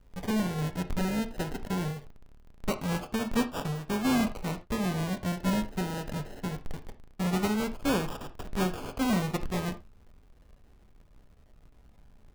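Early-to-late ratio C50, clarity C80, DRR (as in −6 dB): 14.0 dB, 21.5 dB, 8.0 dB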